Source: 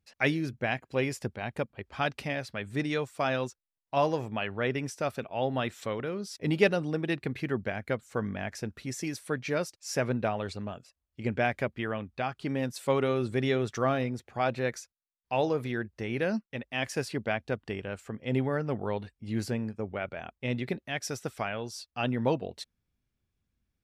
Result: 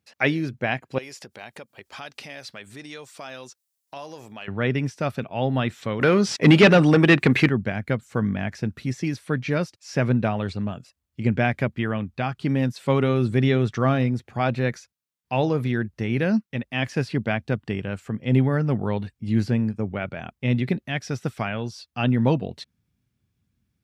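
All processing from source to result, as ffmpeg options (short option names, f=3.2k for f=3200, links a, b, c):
-filter_complex "[0:a]asettb=1/sr,asplit=3[a][b][c];[a]atrim=end=0.984[d];[b]atrim=start=0.98:end=4.48,asetpts=PTS-STARTPTS,afade=t=in:d=0.004:c=qsin,afade=t=out:st=3.496:d=0.004:c=qsin,acompressor=threshold=-40dB:ratio=4:attack=3.2:release=140:knee=1:detection=peak,bass=f=250:g=-14,treble=f=4k:g=13[e];[c]atrim=start=4.476[f];[d][e]acrossfade=d=0.004:c1=hsin:c2=qsin[g];[g][f]acrossfade=d=0.004:c1=qsin:c2=hsin,asettb=1/sr,asplit=3[h][i][j];[h]atrim=end=6.014[k];[i]atrim=start=6.01:end=7.49,asetpts=PTS-STARTPTS,afade=t=in:d=0.004:c=qsin,afade=t=out:st=1.476:d=0.004:c=qsin,highshelf=f=5.9k:t=q:w=1.5:g=8,asplit=2[l][m];[m]highpass=f=720:p=1,volume=24dB,asoftclip=type=tanh:threshold=-10dB[n];[l][n]amix=inputs=2:normalize=0,lowpass=f=6.9k:p=1,volume=-6dB[o];[j]atrim=start=7.486[p];[k][o]acrossfade=d=0.004:c1=hsin:c2=qsin[q];[q][p]acrossfade=d=0.004:c1=qsin:c2=hsin,acrossover=split=4800[r][s];[s]acompressor=threshold=-58dB:ratio=4:attack=1:release=60[t];[r][t]amix=inputs=2:normalize=0,highpass=120,asubboost=boost=3:cutoff=240,volume=5.5dB"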